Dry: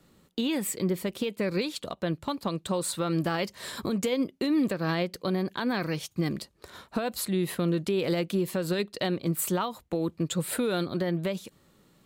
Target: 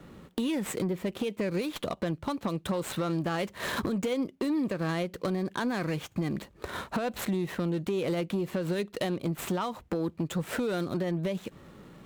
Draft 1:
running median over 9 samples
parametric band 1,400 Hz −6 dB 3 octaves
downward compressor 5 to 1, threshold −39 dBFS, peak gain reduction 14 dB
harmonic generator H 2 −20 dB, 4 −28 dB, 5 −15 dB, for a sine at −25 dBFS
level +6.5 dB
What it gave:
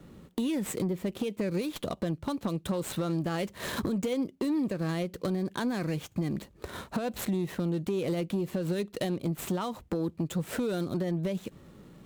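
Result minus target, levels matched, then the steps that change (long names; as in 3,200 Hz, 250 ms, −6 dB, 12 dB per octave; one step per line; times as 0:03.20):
1,000 Hz band −3.0 dB
remove: parametric band 1,400 Hz −6 dB 3 octaves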